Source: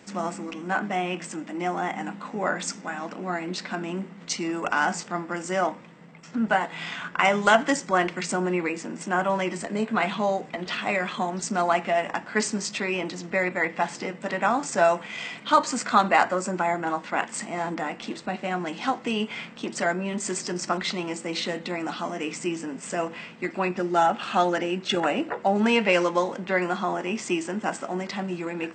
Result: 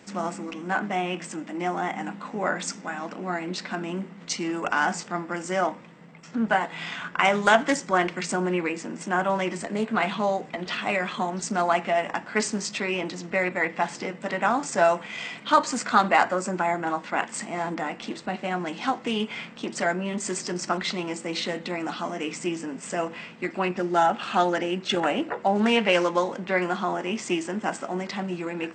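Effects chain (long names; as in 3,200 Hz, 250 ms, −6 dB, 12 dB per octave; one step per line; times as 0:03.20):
highs frequency-modulated by the lows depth 0.18 ms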